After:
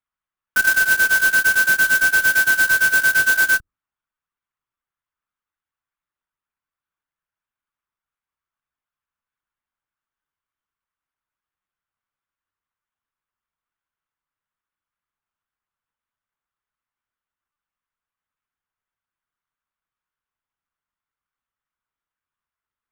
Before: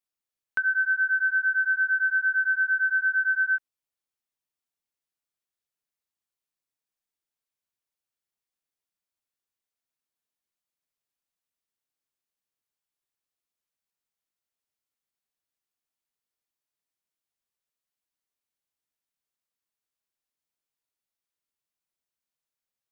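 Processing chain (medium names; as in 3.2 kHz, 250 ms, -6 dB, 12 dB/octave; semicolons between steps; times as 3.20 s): comb filter that takes the minimum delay 2.6 ms; low-pass that closes with the level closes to 1.4 kHz, closed at -26 dBFS; peaking EQ 1.3 kHz +14 dB 1.2 oct; hum notches 50/100/150/200/250/300 Hz; LPC vocoder at 8 kHz pitch kept; sampling jitter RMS 0.036 ms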